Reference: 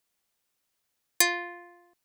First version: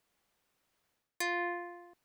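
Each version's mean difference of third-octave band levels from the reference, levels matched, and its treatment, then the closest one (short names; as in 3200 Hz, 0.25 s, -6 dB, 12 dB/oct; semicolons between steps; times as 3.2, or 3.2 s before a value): 4.5 dB: high shelf 3300 Hz -11 dB; reverse; compressor 12:1, threshold -38 dBFS, peak gain reduction 17 dB; reverse; gain +7 dB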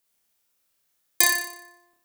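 8.0 dB: high shelf 8100 Hz +6.5 dB; on a send: flutter echo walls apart 5.1 m, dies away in 0.65 s; on the sum: gain -1 dB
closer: first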